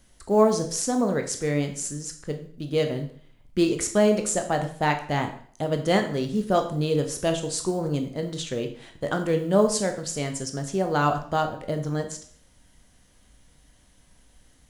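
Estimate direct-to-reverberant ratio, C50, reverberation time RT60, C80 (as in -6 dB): 5.0 dB, 10.0 dB, 0.55 s, 13.0 dB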